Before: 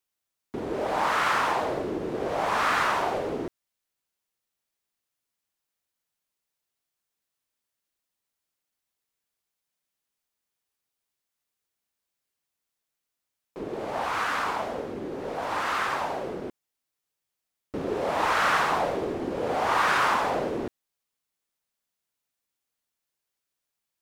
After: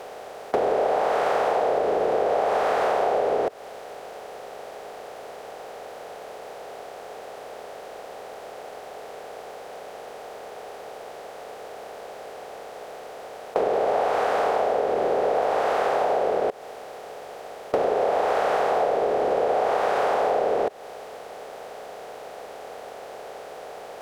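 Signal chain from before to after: per-bin compression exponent 0.4; band shelf 570 Hz +14.5 dB 1.2 oct; compressor 6:1, threshold -20 dBFS, peak gain reduction 13 dB

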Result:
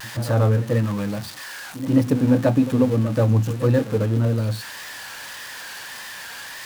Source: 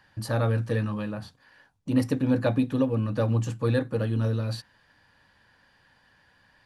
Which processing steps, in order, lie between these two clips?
switching spikes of -18.5 dBFS; LPF 1100 Hz 6 dB/oct; pre-echo 0.14 s -13.5 dB; vibrato 1.7 Hz 69 cents; gain +6.5 dB

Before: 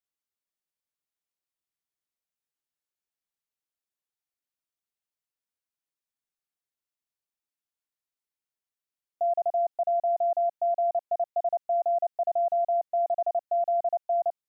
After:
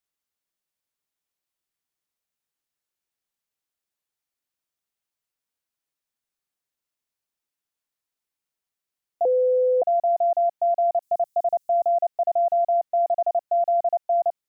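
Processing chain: 9.25–9.82 bleep 506 Hz -21 dBFS; 11.02–11.89 tone controls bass +7 dB, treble +15 dB; gain +4.5 dB

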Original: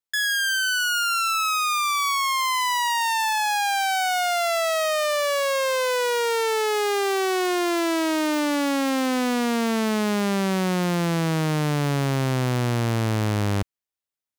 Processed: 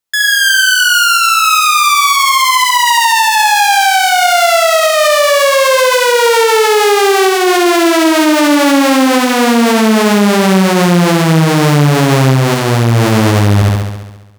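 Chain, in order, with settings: de-hum 124.2 Hz, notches 33; AGC gain up to 4.5 dB; flutter echo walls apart 11.7 m, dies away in 1.1 s; maximiser +11.5 dB; gain -1 dB

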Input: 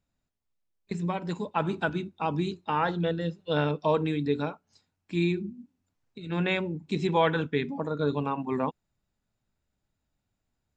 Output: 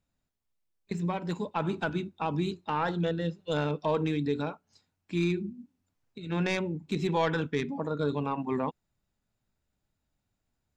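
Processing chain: tracing distortion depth 0.05 ms; in parallel at +3 dB: limiter -20.5 dBFS, peak gain reduction 9 dB; on the sum: gain -8 dB

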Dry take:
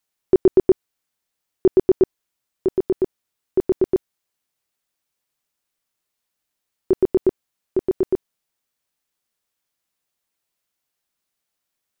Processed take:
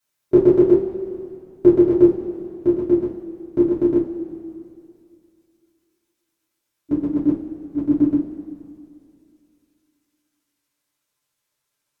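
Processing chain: gliding pitch shift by -6 st starting unshifted; two-slope reverb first 0.24 s, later 2.5 s, from -18 dB, DRR -9 dB; gain -5.5 dB

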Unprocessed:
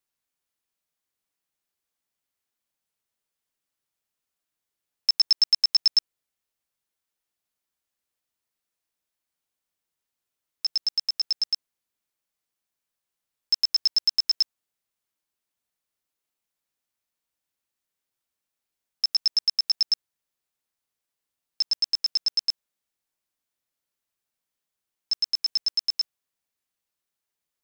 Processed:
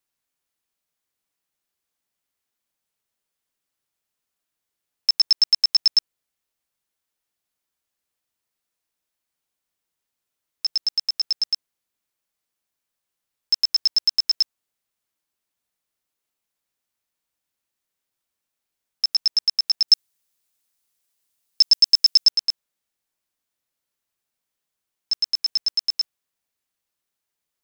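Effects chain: 19.88–22.29 high shelf 3300 Hz +10 dB; gain +2.5 dB

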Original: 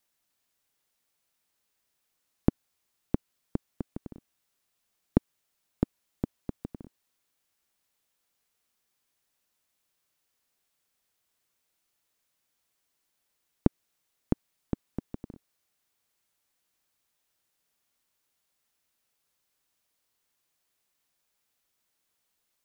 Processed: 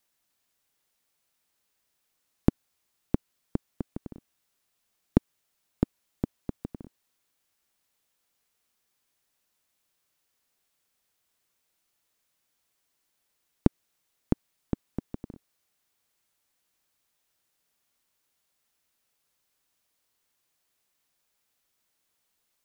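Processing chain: tracing distortion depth 0.061 ms; gain +1.5 dB

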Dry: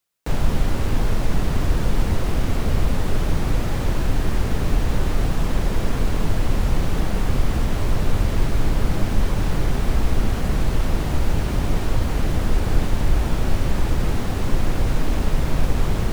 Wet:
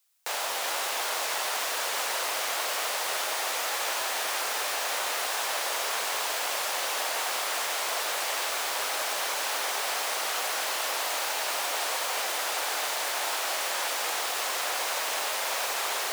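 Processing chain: HPF 620 Hz 24 dB/oct; high shelf 2900 Hz +9 dB; on a send: split-band echo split 1100 Hz, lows 0.155 s, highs 0.376 s, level -6 dB

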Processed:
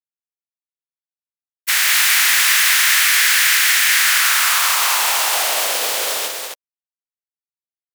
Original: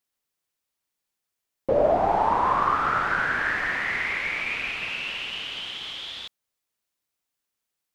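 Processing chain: spectral contrast lowered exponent 0.12; reverse; upward compressor, threshold -44 dBFS; reverse; fuzz box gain 33 dB, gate -42 dBFS; on a send: loudspeakers at several distances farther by 66 m -7 dB, 90 m -6 dB; on the sum: high-pass sweep 1800 Hz -> 520 Hz, 3.91–5.89; mismatched tape noise reduction decoder only; gain -2 dB

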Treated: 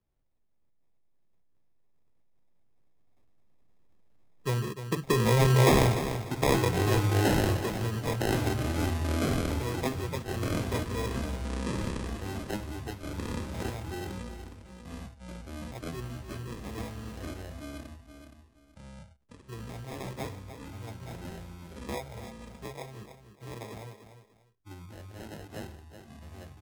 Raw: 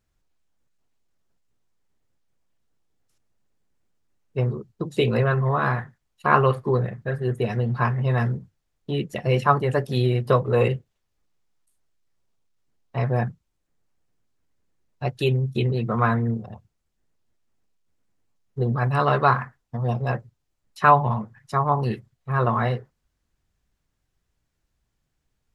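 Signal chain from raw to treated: switching dead time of 0.091 ms; Doppler pass-by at 5.45, 6 m/s, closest 1.3 m; resonant high shelf 1700 Hz -7 dB, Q 3; in parallel at +2 dB: compressor, threshold -37 dBFS, peak gain reduction 19 dB; on the sum: sample-and-hold 29×; feedback echo 0.284 s, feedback 18%, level -13 dB; echoes that change speed 0.105 s, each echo -4 st, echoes 3, each echo -6 dB; speed mistake 25 fps video run at 24 fps; three-band squash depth 40%; gain +3.5 dB

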